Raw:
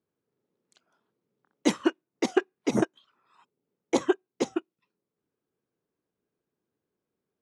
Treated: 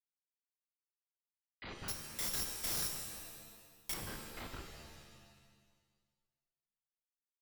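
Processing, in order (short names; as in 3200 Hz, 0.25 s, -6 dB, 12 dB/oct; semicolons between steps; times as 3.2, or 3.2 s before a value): spectral dilation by 60 ms; steep high-pass 1200 Hz 36 dB/oct; harmonic-percussive split percussive -9 dB; compressor 12:1, threshold -47 dBFS, peak gain reduction 16.5 dB; Schmitt trigger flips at -47 dBFS; brick-wall FIR low-pass 5000 Hz; 1.88–3.94 careless resampling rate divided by 8×, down none, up zero stuff; shimmer reverb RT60 1.5 s, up +7 st, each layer -2 dB, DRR 3.5 dB; gain +11 dB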